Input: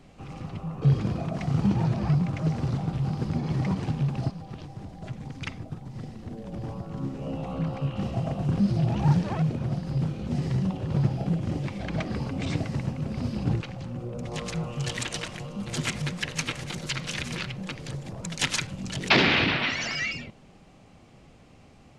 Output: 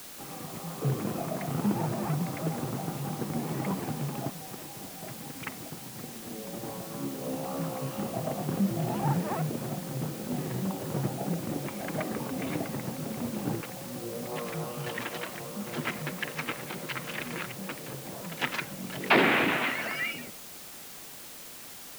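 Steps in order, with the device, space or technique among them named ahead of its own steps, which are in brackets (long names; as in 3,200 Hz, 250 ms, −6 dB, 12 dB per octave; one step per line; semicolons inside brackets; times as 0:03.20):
wax cylinder (band-pass filter 250–2,000 Hz; tape wow and flutter; white noise bed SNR 12 dB)
level +1.5 dB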